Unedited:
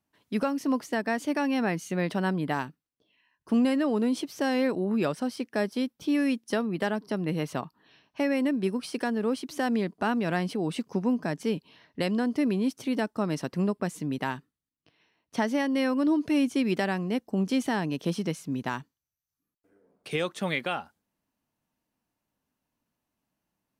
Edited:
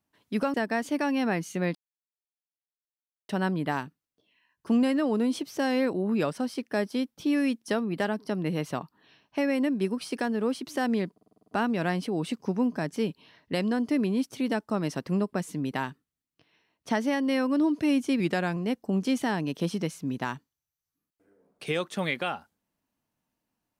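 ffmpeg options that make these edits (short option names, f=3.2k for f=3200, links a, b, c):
-filter_complex "[0:a]asplit=12[a][b][c][d][e][f][g][h][i][j][k][l];[a]atrim=end=0.542[m];[b]atrim=start=0.898:end=2.11,asetpts=PTS-STARTPTS,afade=t=out:st=1.208:d=0.004:c=hsin,apad=pad_dur=1.54[n];[c]atrim=start=2.11:end=10.002,asetpts=PTS-STARTPTS,afade=t=in:d=0.004:c=hsin[o];[d]atrim=start=9.948:end=10.002[p];[e]atrim=start=9.948:end=10.002[q];[f]atrim=start=9.948:end=10.002[r];[g]atrim=start=9.948:end=10.002[s];[h]atrim=start=9.948:end=10.002[t];[i]atrim=start=9.948:end=10.002[u];[j]atrim=start=9.948:end=16.674[v];[k]atrim=start=16.67:end=17.01,asetpts=PTS-STARTPTS,asetrate=41013,aresample=44100[w];[l]atrim=start=17.006[x];[n][o]concat=n=2:v=0:a=1[y];[m][y]acrossfade=d=0.004:c1=hsin:c2=hsin[z];[z][p]acrossfade=d=0.004:c1=hsin:c2=hsin[aa];[aa][q]acrossfade=d=0.004:c1=hsin:c2=hsin[ab];[ab][r]acrossfade=d=0.004:c1=hsin:c2=hsin[ac];[ac][s]acrossfade=d=0.004:c1=hsin:c2=hsin[ad];[ad][t]acrossfade=d=0.004:c1=hsin:c2=hsin[ae];[ae][u]acrossfade=d=0.004:c1=hsin:c2=hsin[af];[af][v]acrossfade=d=0.004:c1=hsin:c2=hsin[ag];[ag][w]acrossfade=d=0.004:c1=hsin:c2=hsin[ah];[ah][x]acrossfade=d=0.004:c1=hsin:c2=hsin"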